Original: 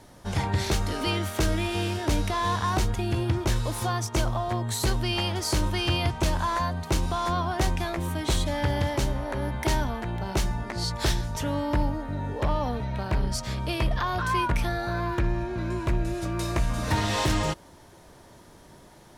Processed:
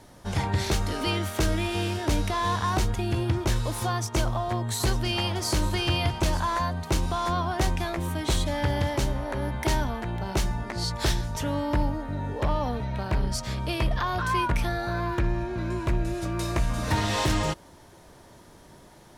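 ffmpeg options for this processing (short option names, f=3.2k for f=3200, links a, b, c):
-filter_complex "[0:a]asettb=1/sr,asplit=3[a][b][c];[a]atrim=end=3.904[d];[b]atrim=start=3.9:end=6.4,asetpts=PTS-STARTPTS,afade=t=in:d=0.004:c=qsin,afade=t=out:st=2.496:d=0.004:c=qsin,aecho=1:1:900:0.211,atrim=end_sample=110250[e];[c]atrim=start=6.396[f];[d][e]acrossfade=d=0.004:c1=hsin:c2=qsin[g];[g][f]acrossfade=d=0.004:c1=qsin:c2=hsin"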